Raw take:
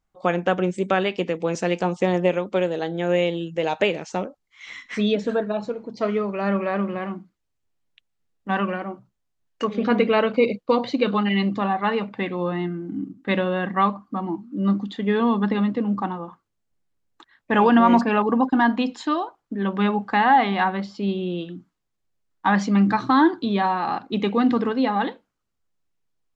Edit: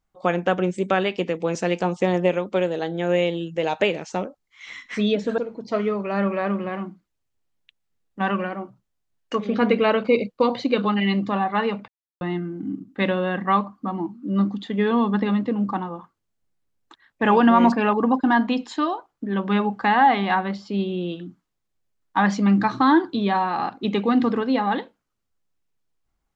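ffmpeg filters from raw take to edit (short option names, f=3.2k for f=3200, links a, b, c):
-filter_complex "[0:a]asplit=4[a][b][c][d];[a]atrim=end=5.382[e];[b]atrim=start=5.668:end=12.17,asetpts=PTS-STARTPTS,afade=t=out:st=6.498:d=0.004:c=hsin[f];[c]atrim=start=12.17:end=12.5,asetpts=PTS-STARTPTS,volume=0[g];[d]atrim=start=12.5,asetpts=PTS-STARTPTS,afade=t=in:d=0.004:c=hsin[h];[f][g][h]concat=n=3:v=0:a=1[i];[e][i]acrossfade=d=0.004:c1=hsin:c2=hsin"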